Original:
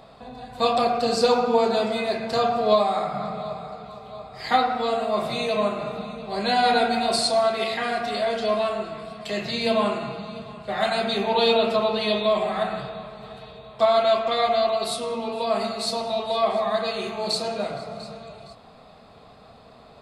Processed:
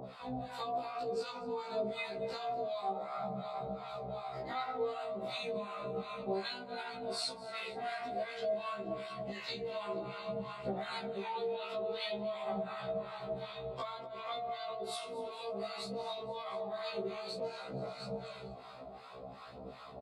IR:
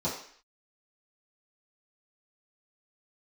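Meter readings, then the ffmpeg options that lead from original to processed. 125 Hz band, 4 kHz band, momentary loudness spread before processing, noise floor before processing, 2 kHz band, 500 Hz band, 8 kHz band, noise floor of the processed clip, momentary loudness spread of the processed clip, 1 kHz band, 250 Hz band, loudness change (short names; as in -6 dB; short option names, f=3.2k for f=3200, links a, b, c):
-10.5 dB, -16.0 dB, 16 LU, -49 dBFS, -15.0 dB, -15.0 dB, -17.0 dB, -50 dBFS, 5 LU, -16.0 dB, -16.0 dB, -16.5 dB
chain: -filter_complex "[0:a]highpass=f=150:p=1,highshelf=f=3.4k:g=-7.5,bandreject=f=1.7k:w=15,alimiter=limit=-18.5dB:level=0:latency=1:release=63,acompressor=threshold=-37dB:ratio=6,aphaser=in_gain=1:out_gain=1:delay=3.4:decay=0.33:speed=0.56:type=triangular,acrossover=split=770[a][b];[a]aeval=exprs='val(0)*(1-1/2+1/2*cos(2*PI*2.7*n/s))':c=same[c];[b]aeval=exprs='val(0)*(1-1/2-1/2*cos(2*PI*2.7*n/s))':c=same[d];[c][d]amix=inputs=2:normalize=0,asplit=2[e][f];[f]aecho=0:1:239|478|717|956:0.112|0.0583|0.0303|0.0158[g];[e][g]amix=inputs=2:normalize=0,afftfilt=real='re*1.73*eq(mod(b,3),0)':imag='im*1.73*eq(mod(b,3),0)':win_size=2048:overlap=0.75,volume=7dB"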